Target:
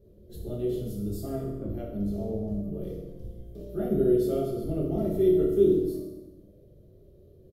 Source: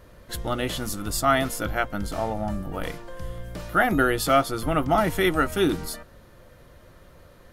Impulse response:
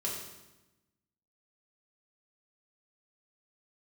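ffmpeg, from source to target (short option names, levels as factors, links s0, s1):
-filter_complex "[0:a]firequalizer=gain_entry='entry(270,0);entry(410,4);entry(940,-27);entry(1700,-29);entry(3500,-16);entry(8600,-18);entry(13000,-8)':delay=0.05:min_phase=1,asettb=1/sr,asplit=3[s0][s1][s2];[s0]atrim=end=1.284[s3];[s1]atrim=start=1.28:end=1.69,asetpts=PTS-STARTPTS,afade=t=in:d=0.004:c=qsin,afade=t=out:st=0.406:d=0.004:c=qsin,adynamicsmooth=sensitivity=1:basefreq=970[s4];[s2]atrim=start=1.686[s5];[s3][s4]acrossfade=d=0.004:c1=hsin:c2=qsin[s6];[s6][s5]acrossfade=d=0.004:c1=qsin:c2=hsin[s7];[1:a]atrim=start_sample=2205[s8];[s7][s8]afir=irnorm=-1:irlink=0,volume=0.473"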